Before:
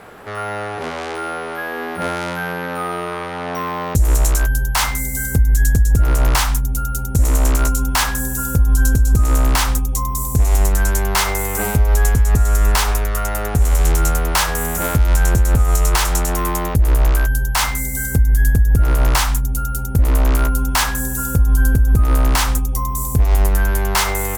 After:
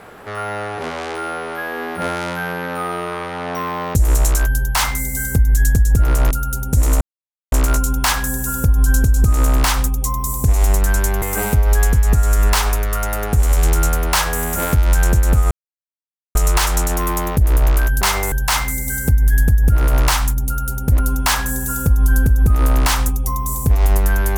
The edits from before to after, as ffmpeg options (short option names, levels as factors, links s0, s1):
-filter_complex "[0:a]asplit=8[s0][s1][s2][s3][s4][s5][s6][s7];[s0]atrim=end=6.312[s8];[s1]atrim=start=6.728:end=7.43,asetpts=PTS-STARTPTS,afade=t=out:st=0.698:d=0.004:c=hsin,apad=pad_dur=0.51[s9];[s2]atrim=start=7.43:end=11.132,asetpts=PTS-STARTPTS,afade=t=in:d=0.004:c=hsin[s10];[s3]atrim=start=11.438:end=15.73,asetpts=PTS-STARTPTS,afade=t=out:st=4.288:d=0.004:c=hsin,apad=pad_dur=0.84[s11];[s4]atrim=start=15.73:end=17.392,asetpts=PTS-STARTPTS,afade=t=in:d=0.004:c=hsin[s12];[s5]atrim=start=11.128:end=11.442[s13];[s6]atrim=start=17.388:end=20.062[s14];[s7]atrim=start=20.478[s15];[s9][s10]concat=n=2:v=0:a=1[s16];[s8][s16]acrossfade=d=0.004:c1=hsin:c2=hsin[s17];[s11][s12]concat=n=2:v=0:a=1[s18];[s17][s18]acrossfade=d=0.004:c1=hsin:c2=hsin[s19];[s19][s13]acrossfade=d=0.004:c1=hsin:c2=hsin[s20];[s20][s14]acrossfade=d=0.004:c1=hsin:c2=hsin[s21];[s21][s15]acrossfade=d=0.004:c1=hsin:c2=hsin"